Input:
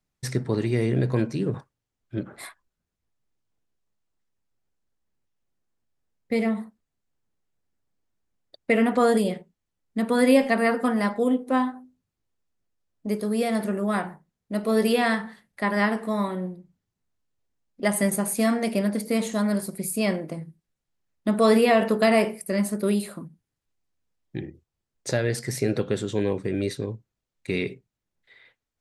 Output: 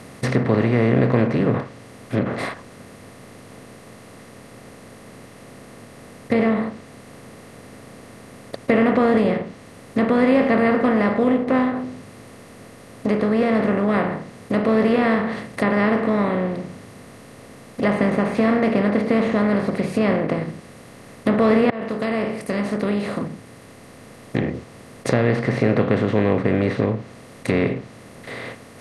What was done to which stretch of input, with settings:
21.7–24.43 fade in
whole clip: per-bin compression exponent 0.4; treble ducked by the level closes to 2600 Hz, closed at -15.5 dBFS; low shelf 190 Hz +7.5 dB; gain -3 dB

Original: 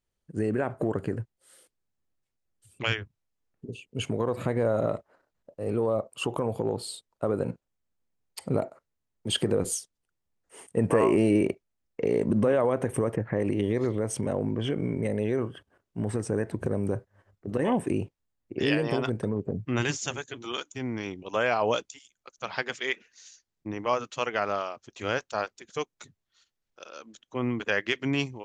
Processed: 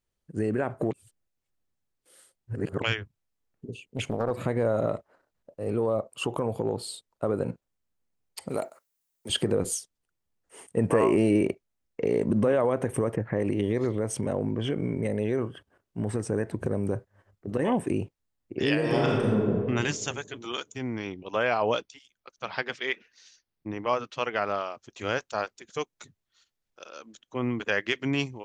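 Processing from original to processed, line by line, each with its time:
0.91–2.82 reverse
3.82–4.31 Doppler distortion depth 0.7 ms
8.49–9.3 RIAA curve recording
18.77–19.52 reverb throw, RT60 1.6 s, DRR -3 dB
20.97–24.7 bell 7000 Hz -13 dB 0.35 oct

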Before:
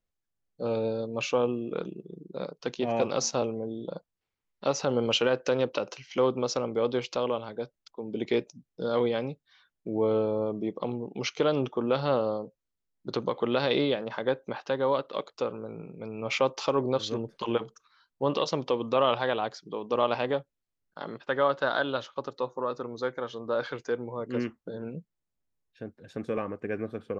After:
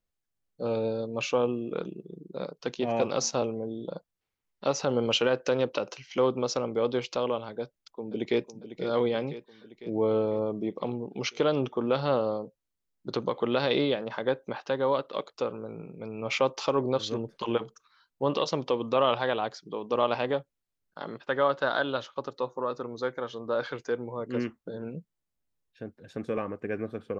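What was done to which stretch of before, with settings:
7.61–8.49 echo throw 0.5 s, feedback 65%, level -11.5 dB

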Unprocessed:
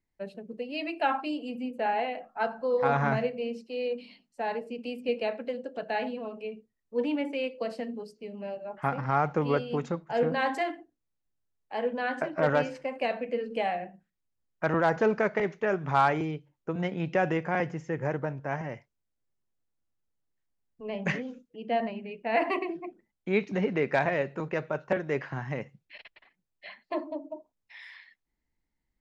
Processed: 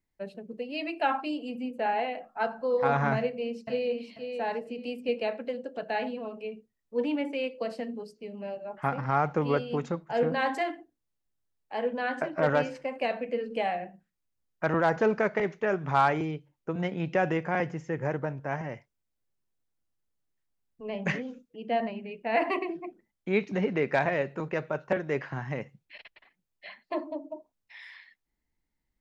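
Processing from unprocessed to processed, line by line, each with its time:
3.18–3.95 echo throw 0.49 s, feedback 25%, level -5.5 dB

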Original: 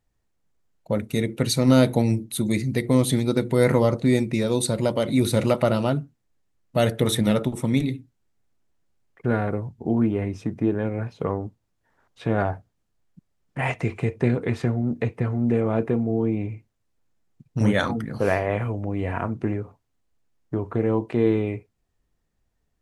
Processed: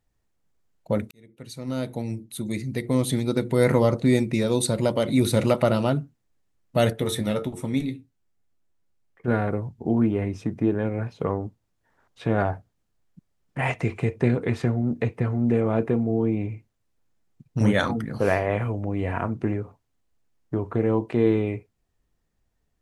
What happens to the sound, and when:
1.11–3.9 fade in
6.93–9.28 resonator 90 Hz, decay 0.15 s, mix 70%

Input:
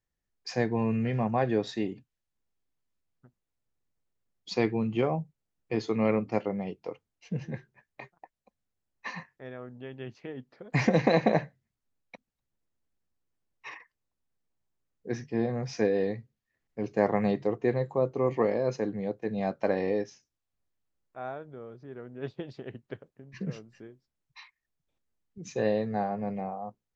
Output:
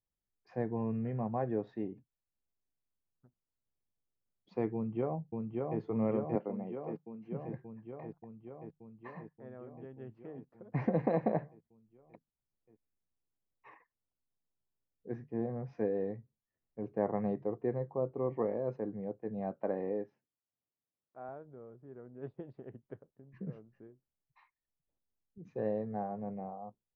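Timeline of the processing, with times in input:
4.74–5.8 echo throw 0.58 s, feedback 75%, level -2.5 dB
6.35–7.45 HPF 150 Hz 24 dB/oct
19.55–21.29 BPF 130–4300 Hz
whole clip: LPF 1100 Hz 12 dB/oct; gain -7 dB

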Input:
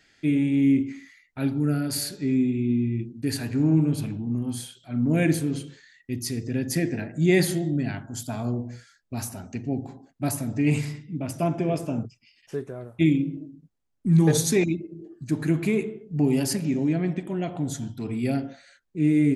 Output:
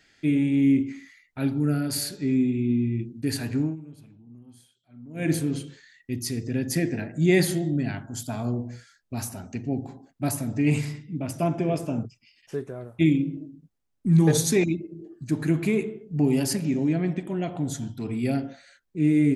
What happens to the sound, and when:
3.56–5.34 dip -20.5 dB, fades 0.20 s

